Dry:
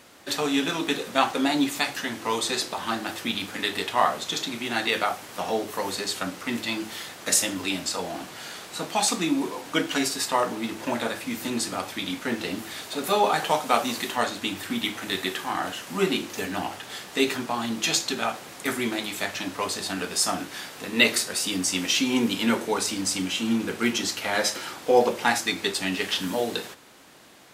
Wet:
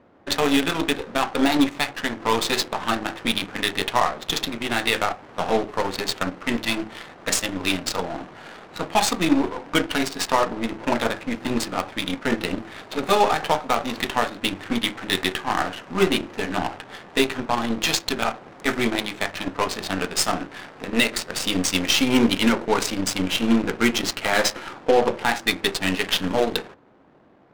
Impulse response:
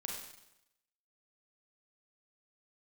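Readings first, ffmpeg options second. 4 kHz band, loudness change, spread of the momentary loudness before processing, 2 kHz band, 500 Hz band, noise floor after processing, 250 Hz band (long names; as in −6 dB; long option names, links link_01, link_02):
+2.5 dB, +3.0 dB, 9 LU, +3.0 dB, +3.5 dB, −45 dBFS, +4.0 dB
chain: -af "alimiter=limit=-13dB:level=0:latency=1:release=255,adynamicsmooth=sensitivity=6:basefreq=790,aeval=exprs='0.224*(cos(1*acos(clip(val(0)/0.224,-1,1)))-cos(1*PI/2))+0.0126*(cos(7*acos(clip(val(0)/0.224,-1,1)))-cos(7*PI/2))+0.0141*(cos(8*acos(clip(val(0)/0.224,-1,1)))-cos(8*PI/2))':channel_layout=same,volume=6dB"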